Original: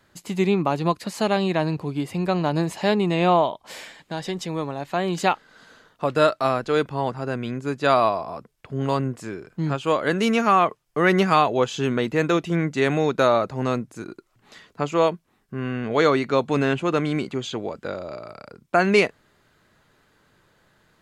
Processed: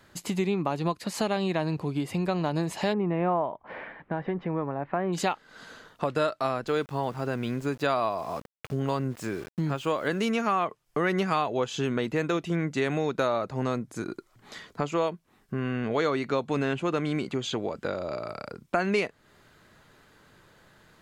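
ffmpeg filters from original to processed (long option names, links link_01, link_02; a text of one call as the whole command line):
ffmpeg -i in.wav -filter_complex "[0:a]asplit=3[link_01][link_02][link_03];[link_01]afade=type=out:start_time=2.92:duration=0.02[link_04];[link_02]lowpass=frequency=1900:width=0.5412,lowpass=frequency=1900:width=1.3066,afade=type=in:start_time=2.92:duration=0.02,afade=type=out:start_time=5.12:duration=0.02[link_05];[link_03]afade=type=in:start_time=5.12:duration=0.02[link_06];[link_04][link_05][link_06]amix=inputs=3:normalize=0,asettb=1/sr,asplit=3[link_07][link_08][link_09];[link_07]atrim=end=6.674[link_10];[link_08]atrim=start=6.67:end=10.29,asetpts=PTS-STARTPTS,afade=type=in:duration=0.004:curve=qsin,afade=type=out:start_time=3.616:duration=0.004:curve=qsin,aeval=exprs='val(0)*gte(abs(val(0)),0.00668)':channel_layout=same[link_11];[link_09]atrim=start=10.286[link_12];[link_10][link_11]acrossfade=duration=0.004:curve1=hsin:curve2=qsin[link_13];[link_13][link_12]acrossfade=duration=0.004:curve1=qsin:curve2=hsin,asettb=1/sr,asplit=3[link_14][link_15][link_16];[link_14]atrim=end=13.674[link_17];[link_15]atrim=start=13.67:end=14.84,asetpts=PTS-STARTPTS,afade=type=in:duration=0.004:curve=qsin,afade=type=out:start_time=1.166:duration=0.004:curve=qsin,bandreject=frequency=2700:width=12[link_18];[link_16]atrim=start=14.836[link_19];[link_17][link_18]acrossfade=duration=0.004:curve1=hsin:curve2=qsin[link_20];[link_20][link_19]acrossfade=duration=0.004:curve1=qsin:curve2=hsin,acompressor=threshold=-32dB:ratio=2.5,volume=3.5dB" out.wav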